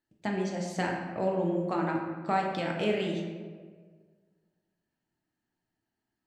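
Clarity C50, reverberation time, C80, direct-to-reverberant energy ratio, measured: 3.0 dB, 1.7 s, 4.5 dB, -1.0 dB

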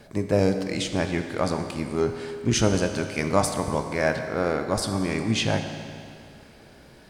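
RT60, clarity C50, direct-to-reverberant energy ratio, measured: 2.4 s, 7.0 dB, 6.0 dB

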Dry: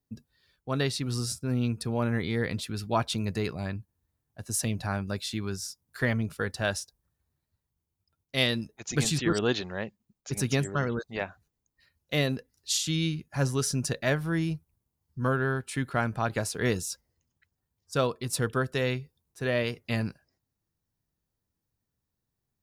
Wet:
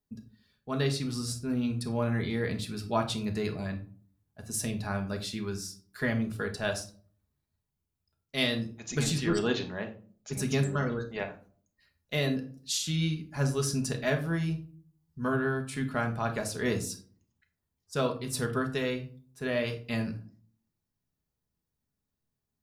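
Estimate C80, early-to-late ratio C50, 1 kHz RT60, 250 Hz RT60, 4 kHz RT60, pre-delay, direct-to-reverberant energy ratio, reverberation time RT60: 16.5 dB, 11.5 dB, 0.40 s, 0.60 s, 0.25 s, 5 ms, 3.5 dB, 0.45 s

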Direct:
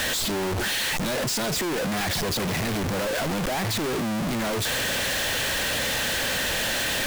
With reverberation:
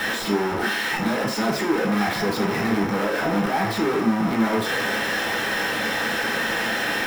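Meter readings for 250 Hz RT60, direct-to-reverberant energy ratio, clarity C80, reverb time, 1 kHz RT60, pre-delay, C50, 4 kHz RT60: 0.35 s, -2.5 dB, 11.5 dB, 0.50 s, 0.60 s, 3 ms, 7.5 dB, 0.55 s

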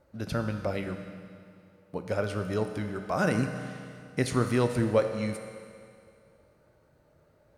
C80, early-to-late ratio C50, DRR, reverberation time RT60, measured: 8.0 dB, 7.0 dB, 6.0 dB, 2.3 s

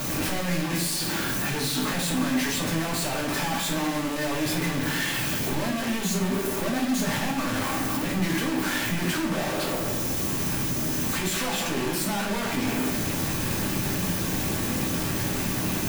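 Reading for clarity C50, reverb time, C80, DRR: 6.5 dB, 0.60 s, 9.5 dB, -3.5 dB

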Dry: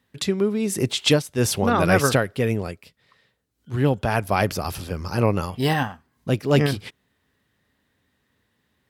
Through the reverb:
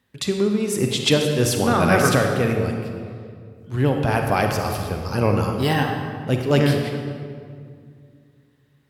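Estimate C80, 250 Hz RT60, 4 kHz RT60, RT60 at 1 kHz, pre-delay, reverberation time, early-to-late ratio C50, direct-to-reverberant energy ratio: 5.0 dB, 2.8 s, 1.3 s, 2.0 s, 38 ms, 2.1 s, 3.5 dB, 3.0 dB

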